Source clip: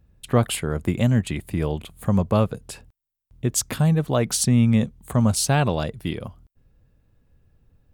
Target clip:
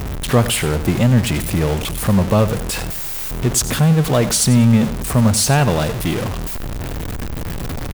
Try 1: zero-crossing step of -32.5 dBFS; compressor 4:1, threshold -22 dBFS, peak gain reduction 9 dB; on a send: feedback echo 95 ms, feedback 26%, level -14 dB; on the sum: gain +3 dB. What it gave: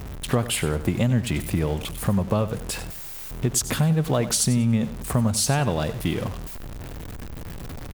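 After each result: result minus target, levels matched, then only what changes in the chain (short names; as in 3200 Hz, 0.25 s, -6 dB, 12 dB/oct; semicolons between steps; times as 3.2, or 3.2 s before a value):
compressor: peak gain reduction +9 dB; zero-crossing step: distortion -9 dB
remove: compressor 4:1, threshold -22 dBFS, peak gain reduction 9 dB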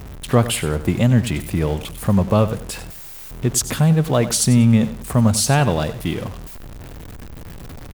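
zero-crossing step: distortion -9 dB
change: zero-crossing step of -21.5 dBFS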